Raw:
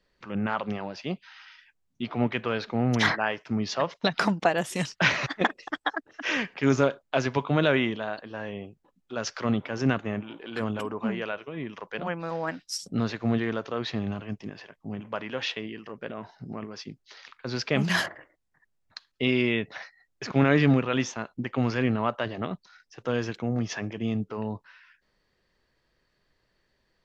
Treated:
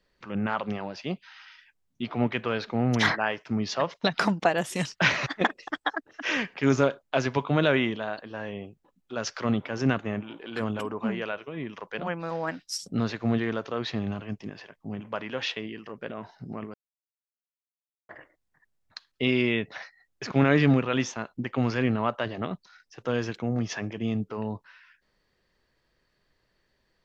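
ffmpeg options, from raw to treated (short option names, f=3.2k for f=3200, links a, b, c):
-filter_complex "[0:a]asplit=3[a][b][c];[a]atrim=end=16.74,asetpts=PTS-STARTPTS,afade=t=out:st=16.736:d=0.004:c=hsin[d];[b]atrim=start=16.74:end=18.09,asetpts=PTS-STARTPTS,volume=0[e];[c]atrim=start=18.09,asetpts=PTS-STARTPTS,afade=t=in:d=0.004:c=hsin[f];[d][e][f]concat=n=3:v=0:a=1"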